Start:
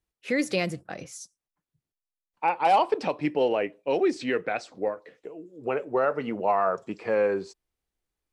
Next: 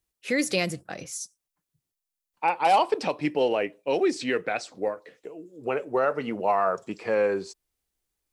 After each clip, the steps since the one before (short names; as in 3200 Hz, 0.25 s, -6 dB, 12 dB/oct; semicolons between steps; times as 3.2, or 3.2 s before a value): high shelf 4400 Hz +9.5 dB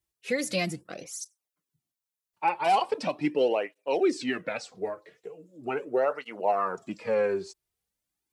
tape flanging out of phase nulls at 0.4 Hz, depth 4.3 ms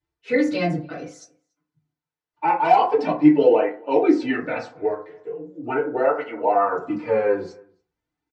air absorption 150 m; outdoor echo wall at 49 m, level -27 dB; FDN reverb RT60 0.4 s, low-frequency decay 1×, high-frequency decay 0.35×, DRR -8.5 dB; gain -2 dB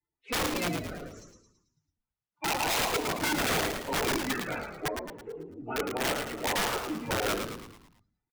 bin magnitudes rounded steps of 30 dB; wrapped overs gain 15 dB; frequency-shifting echo 0.11 s, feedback 49%, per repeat -67 Hz, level -6 dB; gain -8.5 dB